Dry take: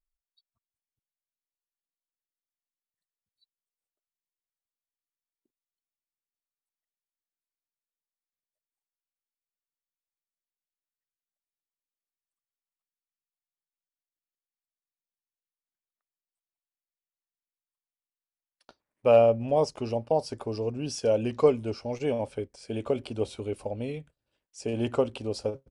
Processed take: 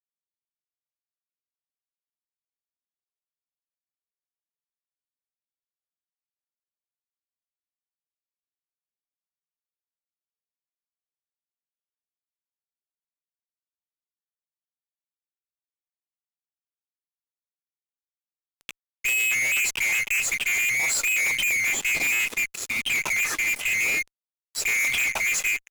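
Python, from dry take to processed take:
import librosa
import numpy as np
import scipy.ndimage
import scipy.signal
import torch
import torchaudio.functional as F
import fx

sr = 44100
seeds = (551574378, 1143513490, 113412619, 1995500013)

y = fx.band_swap(x, sr, width_hz=2000)
y = fx.spec_box(y, sr, start_s=22.65, length_s=0.29, low_hz=280.0, high_hz=2700.0, gain_db=-13)
y = fx.fuzz(y, sr, gain_db=46.0, gate_db=-51.0)
y = y * librosa.db_to_amplitude(-9.0)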